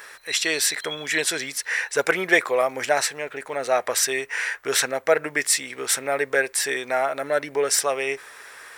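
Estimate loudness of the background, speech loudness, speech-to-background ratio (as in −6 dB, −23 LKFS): −34.0 LKFS, −23.0 LKFS, 11.0 dB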